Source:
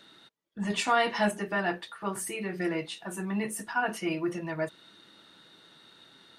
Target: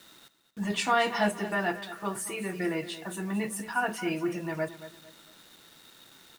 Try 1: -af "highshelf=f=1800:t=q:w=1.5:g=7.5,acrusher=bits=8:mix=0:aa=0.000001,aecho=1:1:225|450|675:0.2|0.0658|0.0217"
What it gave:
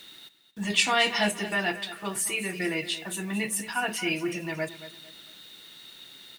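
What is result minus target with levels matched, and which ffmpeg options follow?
4 kHz band +6.0 dB
-af "acrusher=bits=8:mix=0:aa=0.000001,aecho=1:1:225|450|675:0.2|0.0658|0.0217"

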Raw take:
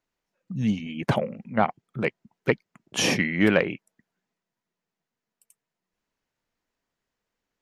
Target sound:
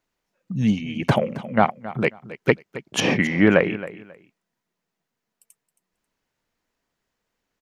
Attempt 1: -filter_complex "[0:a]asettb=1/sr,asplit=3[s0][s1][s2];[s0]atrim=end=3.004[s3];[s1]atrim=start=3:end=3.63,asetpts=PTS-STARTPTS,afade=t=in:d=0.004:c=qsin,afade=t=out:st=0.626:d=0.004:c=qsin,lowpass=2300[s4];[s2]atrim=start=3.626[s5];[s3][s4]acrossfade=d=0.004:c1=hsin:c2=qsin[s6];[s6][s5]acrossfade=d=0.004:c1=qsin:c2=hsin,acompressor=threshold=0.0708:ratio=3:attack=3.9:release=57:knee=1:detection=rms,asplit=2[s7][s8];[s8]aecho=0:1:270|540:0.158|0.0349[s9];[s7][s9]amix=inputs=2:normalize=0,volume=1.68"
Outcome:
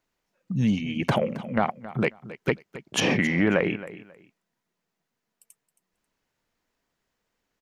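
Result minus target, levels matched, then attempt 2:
compression: peak gain reduction +8 dB
-filter_complex "[0:a]asettb=1/sr,asplit=3[s0][s1][s2];[s0]atrim=end=3.004[s3];[s1]atrim=start=3:end=3.63,asetpts=PTS-STARTPTS,afade=t=in:d=0.004:c=qsin,afade=t=out:st=0.626:d=0.004:c=qsin,lowpass=2300[s4];[s2]atrim=start=3.626[s5];[s3][s4]acrossfade=d=0.004:c1=hsin:c2=qsin[s6];[s6][s5]acrossfade=d=0.004:c1=qsin:c2=hsin,asplit=2[s7][s8];[s8]aecho=0:1:270|540:0.158|0.0349[s9];[s7][s9]amix=inputs=2:normalize=0,volume=1.68"

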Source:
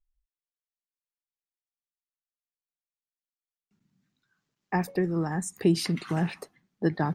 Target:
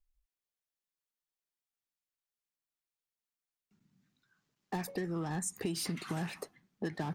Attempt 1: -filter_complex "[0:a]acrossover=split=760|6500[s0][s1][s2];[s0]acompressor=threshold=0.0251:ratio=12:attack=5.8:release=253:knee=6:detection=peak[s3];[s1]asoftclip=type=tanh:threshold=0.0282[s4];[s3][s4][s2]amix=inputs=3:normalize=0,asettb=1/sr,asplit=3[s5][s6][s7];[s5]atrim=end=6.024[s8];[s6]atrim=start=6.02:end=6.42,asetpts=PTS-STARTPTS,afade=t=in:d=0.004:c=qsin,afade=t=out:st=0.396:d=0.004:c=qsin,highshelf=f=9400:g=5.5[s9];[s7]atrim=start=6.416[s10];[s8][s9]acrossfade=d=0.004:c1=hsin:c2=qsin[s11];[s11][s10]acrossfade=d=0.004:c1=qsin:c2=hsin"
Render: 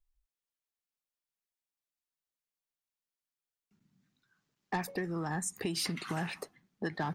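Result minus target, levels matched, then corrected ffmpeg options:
saturation: distortion -8 dB
-filter_complex "[0:a]acrossover=split=760|6500[s0][s1][s2];[s0]acompressor=threshold=0.0251:ratio=12:attack=5.8:release=253:knee=6:detection=peak[s3];[s1]asoftclip=type=tanh:threshold=0.0075[s4];[s3][s4][s2]amix=inputs=3:normalize=0,asettb=1/sr,asplit=3[s5][s6][s7];[s5]atrim=end=6.024[s8];[s6]atrim=start=6.02:end=6.42,asetpts=PTS-STARTPTS,afade=t=in:d=0.004:c=qsin,afade=t=out:st=0.396:d=0.004:c=qsin,highshelf=f=9400:g=5.5[s9];[s7]atrim=start=6.416[s10];[s8][s9]acrossfade=d=0.004:c1=hsin:c2=qsin[s11];[s11][s10]acrossfade=d=0.004:c1=qsin:c2=hsin"

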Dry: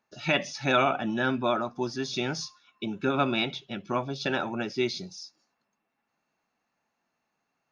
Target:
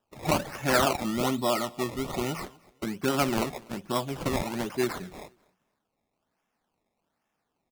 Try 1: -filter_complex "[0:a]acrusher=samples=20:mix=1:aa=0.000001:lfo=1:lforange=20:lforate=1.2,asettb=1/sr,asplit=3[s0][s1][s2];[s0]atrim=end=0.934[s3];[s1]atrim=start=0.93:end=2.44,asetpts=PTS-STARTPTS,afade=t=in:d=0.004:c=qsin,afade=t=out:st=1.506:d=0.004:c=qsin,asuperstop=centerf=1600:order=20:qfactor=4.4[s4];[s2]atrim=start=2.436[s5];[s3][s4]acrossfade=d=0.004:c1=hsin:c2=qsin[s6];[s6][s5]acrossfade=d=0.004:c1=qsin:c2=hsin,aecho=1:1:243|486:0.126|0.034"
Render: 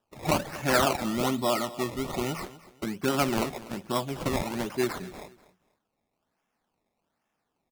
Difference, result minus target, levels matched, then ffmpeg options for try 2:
echo-to-direct +8 dB
-filter_complex "[0:a]acrusher=samples=20:mix=1:aa=0.000001:lfo=1:lforange=20:lforate=1.2,asettb=1/sr,asplit=3[s0][s1][s2];[s0]atrim=end=0.934[s3];[s1]atrim=start=0.93:end=2.44,asetpts=PTS-STARTPTS,afade=t=in:d=0.004:c=qsin,afade=t=out:st=1.506:d=0.004:c=qsin,asuperstop=centerf=1600:order=20:qfactor=4.4[s4];[s2]atrim=start=2.436[s5];[s3][s4]acrossfade=d=0.004:c1=hsin:c2=qsin[s6];[s6][s5]acrossfade=d=0.004:c1=qsin:c2=hsin,aecho=1:1:243|486:0.0501|0.0135"

